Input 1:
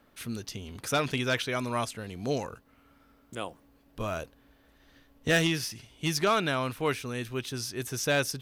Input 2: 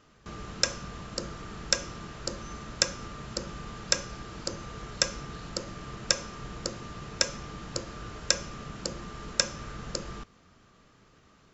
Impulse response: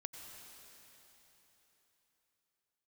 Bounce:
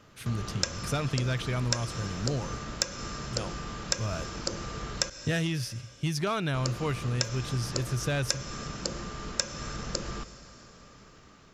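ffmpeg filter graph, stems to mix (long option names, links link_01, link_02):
-filter_complex "[0:a]lowpass=12000,equalizer=frequency=120:width=1.6:gain=15,volume=-2.5dB[link_01];[1:a]dynaudnorm=framelen=460:gausssize=5:maxgain=5.5dB,volume=0dB,asplit=3[link_02][link_03][link_04];[link_02]atrim=end=5.1,asetpts=PTS-STARTPTS,afade=type=out:start_time=5.096:duration=0.004:curve=hsin[link_05];[link_03]atrim=start=5.1:end=6.54,asetpts=PTS-STARTPTS,volume=0[link_06];[link_04]atrim=start=6.54,asetpts=PTS-STARTPTS,afade=type=in:duration=0.004:curve=hsin[link_07];[link_05][link_06][link_07]concat=n=3:v=0:a=1,asplit=2[link_08][link_09];[link_09]volume=-4dB[link_10];[2:a]atrim=start_sample=2205[link_11];[link_10][link_11]afir=irnorm=-1:irlink=0[link_12];[link_01][link_08][link_12]amix=inputs=3:normalize=0,acompressor=threshold=-26dB:ratio=3"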